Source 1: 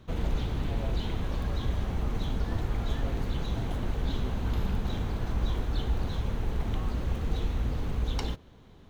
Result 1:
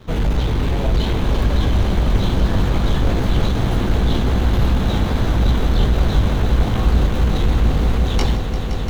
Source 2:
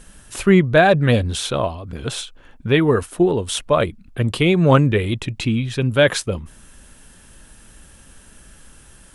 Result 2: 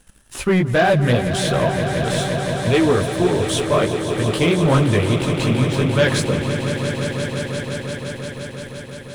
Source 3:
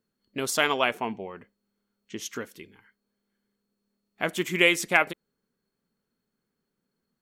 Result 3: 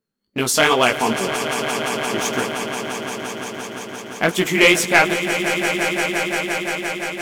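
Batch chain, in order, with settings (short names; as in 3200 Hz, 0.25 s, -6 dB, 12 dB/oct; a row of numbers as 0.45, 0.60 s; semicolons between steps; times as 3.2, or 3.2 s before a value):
chorus 2.5 Hz, delay 15.5 ms, depth 4.9 ms; sample leveller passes 2; swelling echo 0.173 s, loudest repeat 5, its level -11.5 dB; match loudness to -19 LUFS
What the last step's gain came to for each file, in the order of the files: +9.5, -4.5, +5.5 dB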